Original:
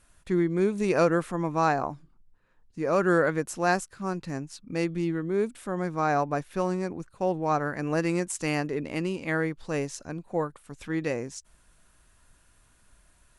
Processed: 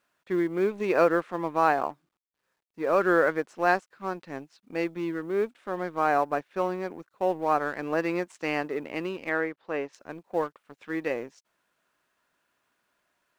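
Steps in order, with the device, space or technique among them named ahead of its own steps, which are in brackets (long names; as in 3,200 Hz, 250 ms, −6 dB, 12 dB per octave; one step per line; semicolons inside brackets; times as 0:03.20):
phone line with mismatched companding (band-pass filter 320–3,200 Hz; mu-law and A-law mismatch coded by A)
0:09.29–0:09.93: bass and treble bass −5 dB, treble −10 dB
level +2.5 dB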